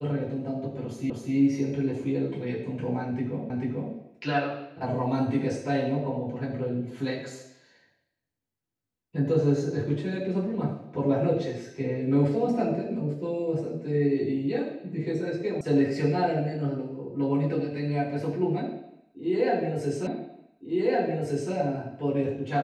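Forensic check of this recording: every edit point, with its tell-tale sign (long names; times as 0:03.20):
0:01.10: the same again, the last 0.25 s
0:03.50: the same again, the last 0.44 s
0:15.61: cut off before it has died away
0:20.07: the same again, the last 1.46 s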